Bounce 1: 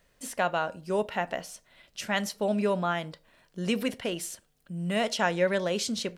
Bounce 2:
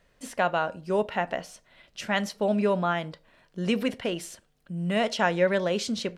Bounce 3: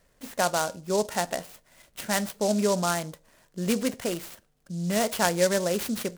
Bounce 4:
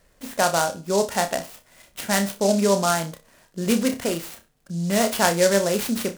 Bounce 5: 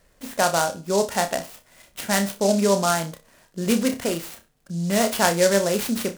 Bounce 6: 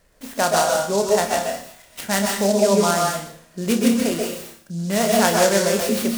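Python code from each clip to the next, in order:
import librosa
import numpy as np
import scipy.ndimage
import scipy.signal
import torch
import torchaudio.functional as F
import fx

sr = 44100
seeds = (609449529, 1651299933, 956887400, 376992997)

y1 = fx.high_shelf(x, sr, hz=6500.0, db=-11.0)
y1 = F.gain(torch.from_numpy(y1), 2.5).numpy()
y2 = fx.noise_mod_delay(y1, sr, seeds[0], noise_hz=5900.0, depth_ms=0.069)
y3 = fx.room_flutter(y2, sr, wall_m=5.2, rt60_s=0.23)
y3 = F.gain(torch.from_numpy(y3), 4.0).numpy()
y4 = y3
y5 = fx.rev_plate(y4, sr, seeds[1], rt60_s=0.53, hf_ratio=1.0, predelay_ms=115, drr_db=0.5)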